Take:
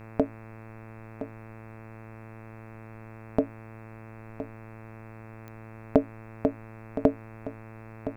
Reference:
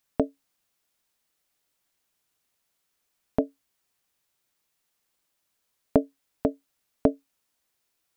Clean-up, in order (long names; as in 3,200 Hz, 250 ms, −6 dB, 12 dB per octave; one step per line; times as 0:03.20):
click removal
hum removal 111.1 Hz, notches 24
broadband denoise 30 dB, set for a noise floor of −45 dBFS
echo removal 1,016 ms −12 dB